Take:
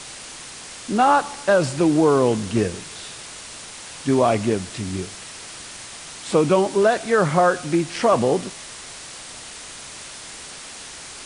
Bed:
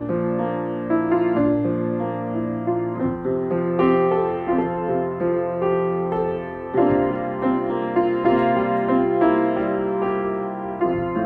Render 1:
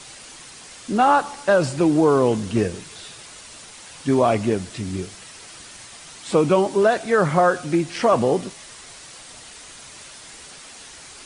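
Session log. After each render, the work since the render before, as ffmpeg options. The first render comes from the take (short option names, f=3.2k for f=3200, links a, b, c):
-af "afftdn=nr=6:nf=-38"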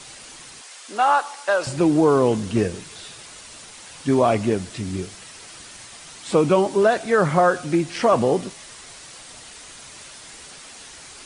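-filter_complex "[0:a]asettb=1/sr,asplit=3[a][b][c];[a]atrim=end=0.614[d];[b]atrim=start=0.61:end=1.67,asetpts=PTS-STARTPTS,afade=t=in:d=0.004:c=qsin,afade=t=out:st=1.056:d=0.004:c=qsin,highpass=650[e];[c]atrim=start=1.666[f];[d][e]acrossfade=d=0.004:c1=hsin:c2=qsin[g];[g][f]acrossfade=d=0.004:c1=qsin:c2=hsin"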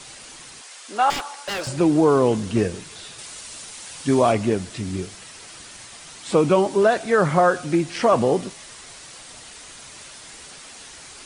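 -filter_complex "[0:a]asettb=1/sr,asplit=3[a][b][c];[a]atrim=end=1.104[d];[b]atrim=start=1.1:end=1.68,asetpts=PTS-STARTPTS,afade=t=in:d=0.004:c=qsin,afade=t=out:st=0.576:d=0.004:c=qsin,aeval=exprs='0.0794*(abs(mod(val(0)/0.0794+3,4)-2)-1)':c=same[e];[c]atrim=start=1.676[f];[d][e]acrossfade=d=0.004:c1=hsin:c2=qsin[g];[g][f]acrossfade=d=0.004:c1=qsin:c2=hsin,asettb=1/sr,asplit=3[h][i][j];[h]atrim=end=3.184[k];[i]atrim=start=3.18:end=4.32,asetpts=PTS-STARTPTS,afade=t=in:d=0.004:c=qsin,afade=t=out:st=1.136:d=0.004:c=qsin,highshelf=f=3.9k:g=6[l];[j]atrim=start=4.316[m];[k][l]acrossfade=d=0.004:c1=hsin:c2=qsin[n];[n][m]acrossfade=d=0.004:c1=qsin:c2=hsin"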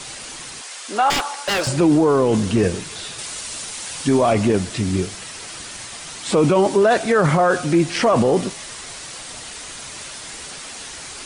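-af "alimiter=limit=-14.5dB:level=0:latency=1:release=12,acontrast=87"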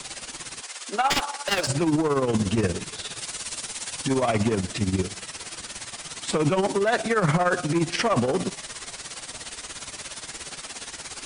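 -filter_complex "[0:a]tremolo=f=17:d=0.72,acrossover=split=180|1100|3400[a][b][c][d];[b]asoftclip=type=tanh:threshold=-21dB[e];[a][e][c][d]amix=inputs=4:normalize=0"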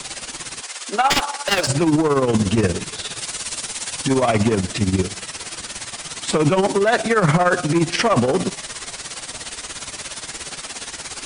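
-af "volume=5.5dB"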